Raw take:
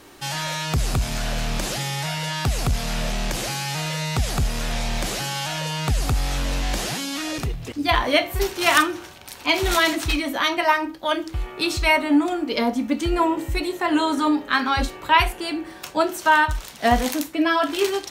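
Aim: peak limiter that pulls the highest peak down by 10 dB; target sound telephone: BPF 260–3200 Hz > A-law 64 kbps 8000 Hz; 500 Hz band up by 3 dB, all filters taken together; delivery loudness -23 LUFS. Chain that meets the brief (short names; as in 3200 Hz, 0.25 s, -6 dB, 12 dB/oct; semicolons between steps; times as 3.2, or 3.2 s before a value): bell 500 Hz +5 dB; limiter -11 dBFS; BPF 260–3200 Hz; gain +2 dB; A-law 64 kbps 8000 Hz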